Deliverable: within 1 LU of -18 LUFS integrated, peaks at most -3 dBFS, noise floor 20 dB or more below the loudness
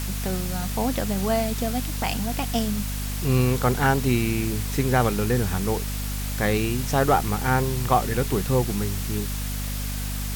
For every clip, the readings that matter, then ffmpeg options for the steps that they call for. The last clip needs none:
hum 50 Hz; highest harmonic 250 Hz; hum level -27 dBFS; noise floor -29 dBFS; noise floor target -45 dBFS; loudness -24.5 LUFS; peak level -7.0 dBFS; loudness target -18.0 LUFS
-> -af "bandreject=f=50:t=h:w=4,bandreject=f=100:t=h:w=4,bandreject=f=150:t=h:w=4,bandreject=f=200:t=h:w=4,bandreject=f=250:t=h:w=4"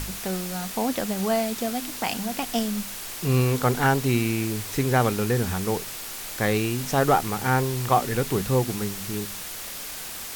hum not found; noise floor -36 dBFS; noise floor target -45 dBFS
-> -af "afftdn=nr=9:nf=-36"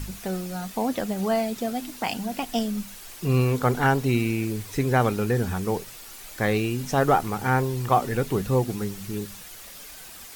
noise floor -43 dBFS; noise floor target -46 dBFS
-> -af "afftdn=nr=6:nf=-43"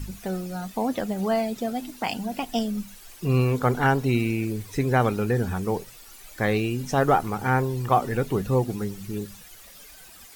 noise floor -47 dBFS; loudness -25.5 LUFS; peak level -7.5 dBFS; loudness target -18.0 LUFS
-> -af "volume=2.37,alimiter=limit=0.708:level=0:latency=1"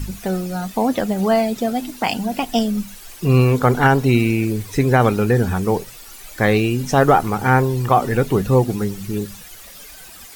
loudness -18.5 LUFS; peak level -3.0 dBFS; noise floor -40 dBFS

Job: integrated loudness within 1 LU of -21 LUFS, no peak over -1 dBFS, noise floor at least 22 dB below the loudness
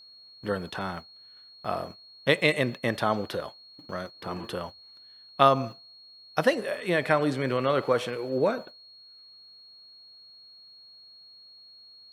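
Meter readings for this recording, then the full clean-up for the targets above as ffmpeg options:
steady tone 4.3 kHz; tone level -49 dBFS; loudness -27.5 LUFS; peak level -4.0 dBFS; loudness target -21.0 LUFS
-> -af "bandreject=f=4300:w=30"
-af "volume=2.11,alimiter=limit=0.891:level=0:latency=1"

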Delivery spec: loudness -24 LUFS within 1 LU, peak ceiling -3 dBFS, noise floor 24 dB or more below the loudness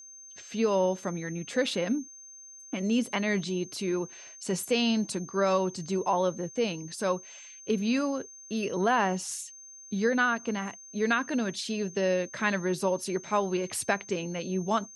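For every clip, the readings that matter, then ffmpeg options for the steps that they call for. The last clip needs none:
steady tone 6.3 kHz; tone level -46 dBFS; loudness -29.5 LUFS; peak level -12.0 dBFS; loudness target -24.0 LUFS
-> -af "bandreject=f=6300:w=30"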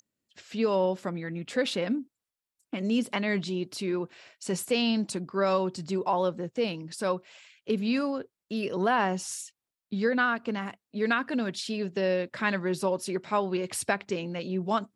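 steady tone not found; loudness -29.5 LUFS; peak level -12.0 dBFS; loudness target -24.0 LUFS
-> -af "volume=1.88"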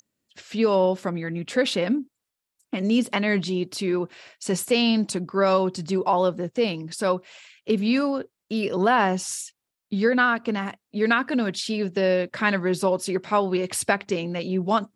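loudness -24.0 LUFS; peak level -6.5 dBFS; noise floor -84 dBFS

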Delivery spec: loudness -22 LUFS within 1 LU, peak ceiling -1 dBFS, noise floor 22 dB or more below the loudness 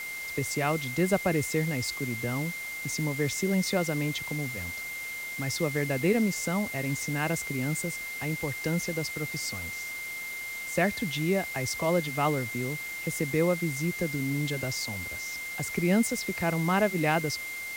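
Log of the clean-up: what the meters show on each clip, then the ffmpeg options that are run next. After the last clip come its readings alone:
steady tone 2.1 kHz; tone level -35 dBFS; noise floor -37 dBFS; noise floor target -52 dBFS; loudness -29.5 LUFS; peak level -13.5 dBFS; loudness target -22.0 LUFS
-> -af "bandreject=f=2100:w=30"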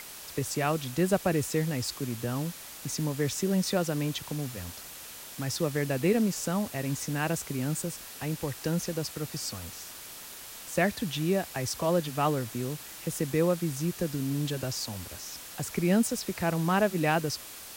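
steady tone not found; noise floor -45 dBFS; noise floor target -52 dBFS
-> -af "afftdn=nr=7:nf=-45"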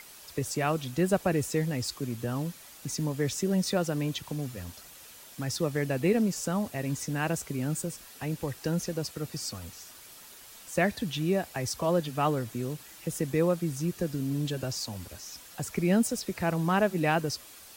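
noise floor -50 dBFS; noise floor target -53 dBFS
-> -af "afftdn=nr=6:nf=-50"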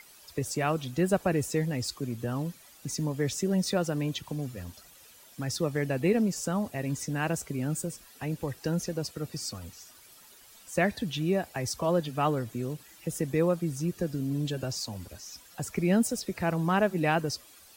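noise floor -55 dBFS; loudness -30.5 LUFS; peak level -14.0 dBFS; loudness target -22.0 LUFS
-> -af "volume=2.66"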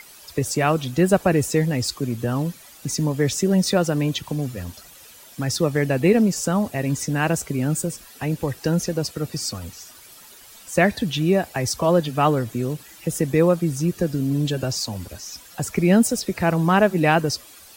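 loudness -22.0 LUFS; peak level -5.5 dBFS; noise floor -46 dBFS

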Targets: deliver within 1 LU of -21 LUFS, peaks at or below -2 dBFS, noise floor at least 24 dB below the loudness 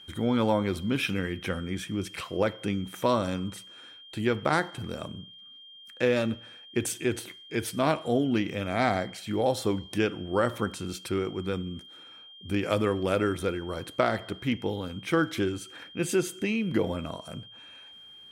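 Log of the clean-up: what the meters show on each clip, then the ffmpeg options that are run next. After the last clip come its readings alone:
steady tone 3.2 kHz; tone level -47 dBFS; loudness -29.0 LUFS; peak level -11.0 dBFS; loudness target -21.0 LUFS
-> -af "bandreject=f=3200:w=30"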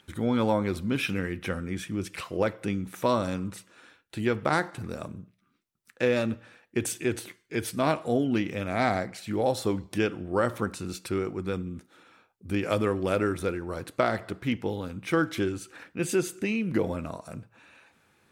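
steady tone not found; loudness -29.5 LUFS; peak level -11.0 dBFS; loudness target -21.0 LUFS
-> -af "volume=2.66"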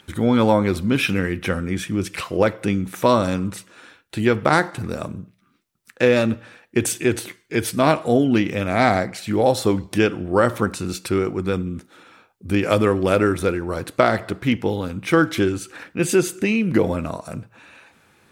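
loudness -21.0 LUFS; peak level -2.5 dBFS; noise floor -61 dBFS

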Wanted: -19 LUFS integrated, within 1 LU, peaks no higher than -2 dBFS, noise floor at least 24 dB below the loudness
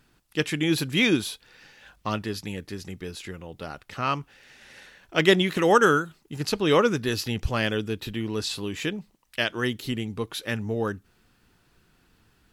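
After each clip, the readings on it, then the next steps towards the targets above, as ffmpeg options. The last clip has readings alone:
loudness -25.5 LUFS; peak level -5.5 dBFS; loudness target -19.0 LUFS
-> -af "volume=2.11,alimiter=limit=0.794:level=0:latency=1"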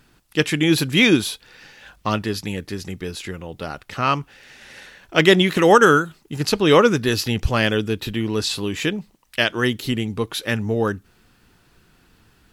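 loudness -19.5 LUFS; peak level -2.0 dBFS; noise floor -58 dBFS

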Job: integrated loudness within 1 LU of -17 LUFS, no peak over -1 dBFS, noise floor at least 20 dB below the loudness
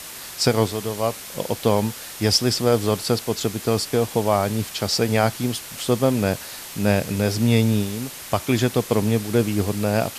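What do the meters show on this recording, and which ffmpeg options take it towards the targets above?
noise floor -37 dBFS; noise floor target -42 dBFS; loudness -22.0 LUFS; peak level -4.5 dBFS; loudness target -17.0 LUFS
-> -af "afftdn=nr=6:nf=-37"
-af "volume=1.78,alimiter=limit=0.891:level=0:latency=1"

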